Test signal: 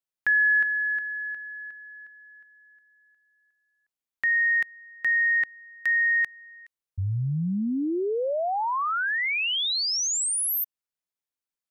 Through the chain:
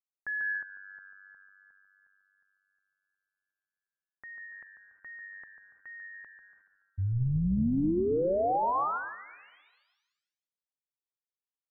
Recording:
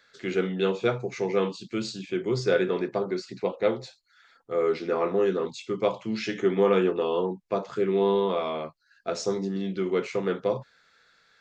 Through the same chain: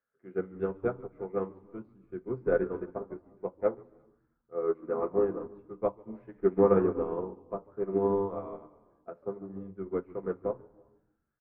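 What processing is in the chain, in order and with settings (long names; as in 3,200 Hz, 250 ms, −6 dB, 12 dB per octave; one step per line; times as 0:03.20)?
low-pass filter 1,400 Hz 24 dB per octave
on a send: echo with shifted repeats 143 ms, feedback 43%, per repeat −97 Hz, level −10 dB
on the sum: reverb whose tail is shaped and stops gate 380 ms rising, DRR 11.5 dB
expander for the loud parts 2.5 to 1, over −33 dBFS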